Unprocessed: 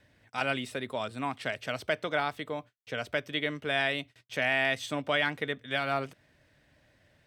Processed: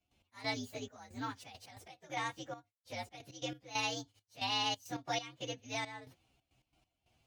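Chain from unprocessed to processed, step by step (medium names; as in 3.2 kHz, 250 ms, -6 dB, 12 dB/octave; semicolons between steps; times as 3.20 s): frequency axis rescaled in octaves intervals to 122%; 1.52–2.17 s: compression 2.5:1, threshold -36 dBFS, peak gain reduction 6 dB; trance gate ".x..xxxx..xxx.x" 136 bpm -12 dB; trim -4.5 dB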